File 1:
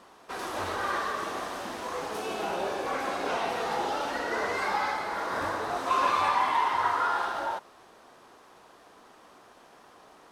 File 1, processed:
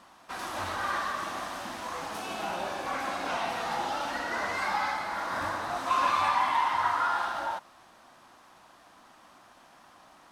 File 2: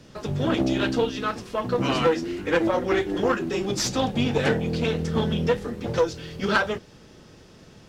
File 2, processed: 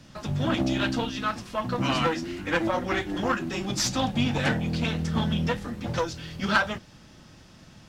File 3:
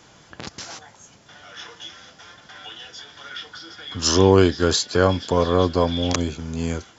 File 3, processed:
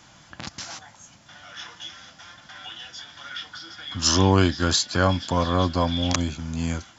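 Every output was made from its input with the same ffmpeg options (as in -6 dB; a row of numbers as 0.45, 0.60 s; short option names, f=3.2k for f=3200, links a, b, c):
-af "equalizer=f=430:w=3.1:g=-14"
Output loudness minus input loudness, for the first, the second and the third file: -1.0, -2.5, -3.0 LU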